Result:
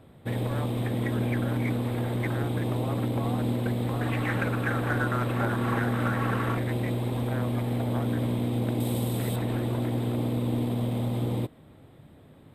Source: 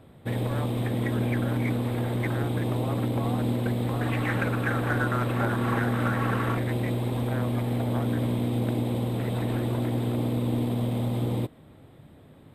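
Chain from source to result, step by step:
0:08.80–0:09.36: bass and treble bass +1 dB, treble +12 dB
level −1 dB

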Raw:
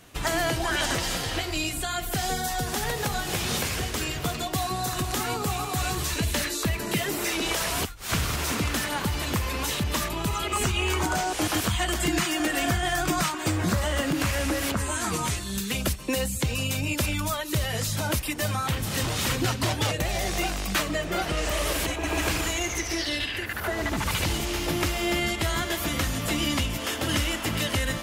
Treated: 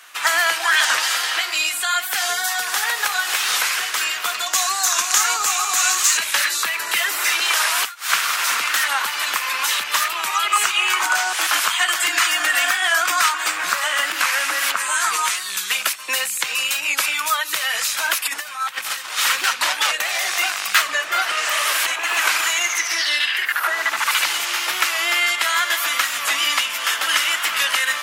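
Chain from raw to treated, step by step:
loose part that buzzes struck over −29 dBFS, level −29 dBFS
0:04.46–0:06.18: parametric band 6,600 Hz +12 dB 0.57 octaves
0:18.26–0:19.18: compressor whose output falls as the input rises −32 dBFS, ratio −0.5
high-pass with resonance 1,300 Hz, resonance Q 1.6
wow of a warped record 45 rpm, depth 100 cents
level +8.5 dB

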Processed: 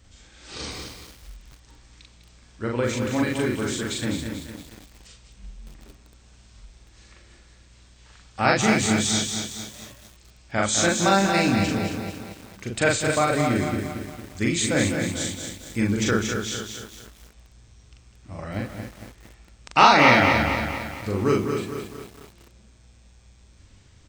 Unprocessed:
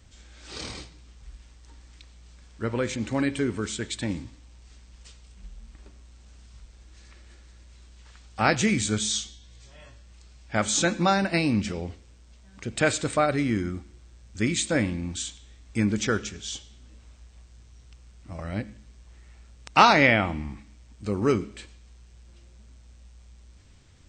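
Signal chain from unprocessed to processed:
dynamic equaliser 180 Hz, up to −5 dB, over −47 dBFS, Q 5.8
on a send: loudspeakers that aren't time-aligned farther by 14 metres −1 dB, 69 metres −9 dB
on the sum: feedback echo at a low word length 228 ms, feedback 55%, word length 7 bits, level −6 dB

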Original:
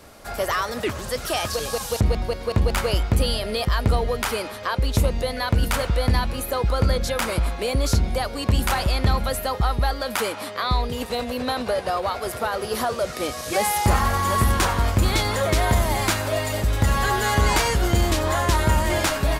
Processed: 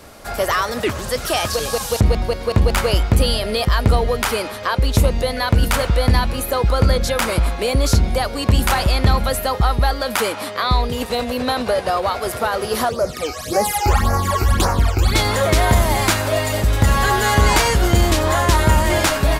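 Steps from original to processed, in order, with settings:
0:12.89–0:15.15: all-pass phaser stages 12, 1.8 Hz, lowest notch 180–3,400 Hz
level +5 dB

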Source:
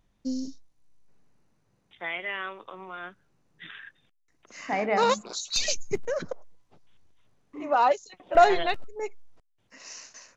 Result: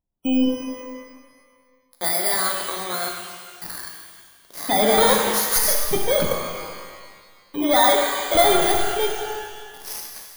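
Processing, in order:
samples in bit-reversed order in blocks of 16 samples
parametric band 3,600 Hz +4 dB 0.35 octaves
leveller curve on the samples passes 5
gate on every frequency bin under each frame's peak −30 dB strong
reverb with rising layers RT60 1.7 s, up +12 semitones, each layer −8 dB, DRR 1 dB
level −7 dB

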